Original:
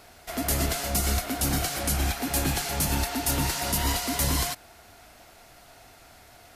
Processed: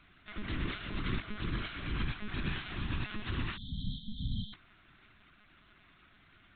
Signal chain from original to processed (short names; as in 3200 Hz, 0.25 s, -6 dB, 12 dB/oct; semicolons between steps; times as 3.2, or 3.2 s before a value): monotone LPC vocoder at 8 kHz 210 Hz; spectral delete 3.57–4.53, 270–3100 Hz; band shelf 630 Hz -15 dB 1.2 oct; gain -7 dB